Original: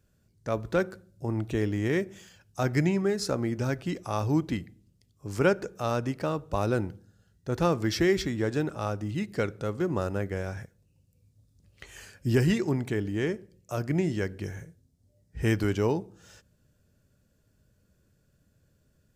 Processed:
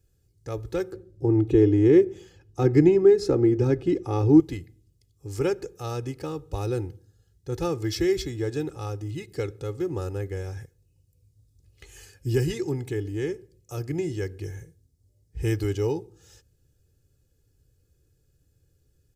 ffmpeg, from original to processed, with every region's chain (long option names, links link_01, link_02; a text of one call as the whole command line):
ffmpeg -i in.wav -filter_complex "[0:a]asettb=1/sr,asplit=3[link_01][link_02][link_03];[link_01]atrim=end=0.924[link_04];[link_02]atrim=start=0.92:end=4.4,asetpts=PTS-STARTPTS,afade=type=in:duration=0.004:curve=qsin,afade=type=out:start_time=3.476:duration=0.004:curve=qsin,lowpass=frequency=1800:poles=1,equalizer=frequency=330:width=1.3:gain=8,acontrast=26[link_05];[link_03]atrim=start=4.396[link_06];[link_04][link_05]acrossfade=duration=0.004:curve1=hsin:curve2=qsin[link_07];[link_07][link_06]acrossfade=duration=0.004:curve1=qsin:curve2=hsin,equalizer=frequency=1200:width_type=o:width=2.7:gain=-9,aecho=1:1:2.4:0.83" out.wav